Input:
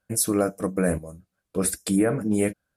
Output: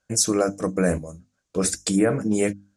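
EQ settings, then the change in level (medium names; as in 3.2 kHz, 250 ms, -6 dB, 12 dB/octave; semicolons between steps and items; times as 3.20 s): resonant low-pass 6.6 kHz, resonance Q 3.3; hum notches 50/100/150/200/250/300 Hz; +2.0 dB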